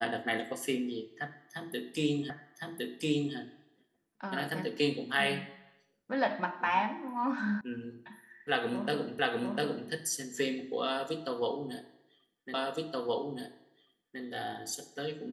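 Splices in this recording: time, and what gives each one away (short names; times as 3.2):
2.3 repeat of the last 1.06 s
7.61 sound cut off
9.19 repeat of the last 0.7 s
12.54 repeat of the last 1.67 s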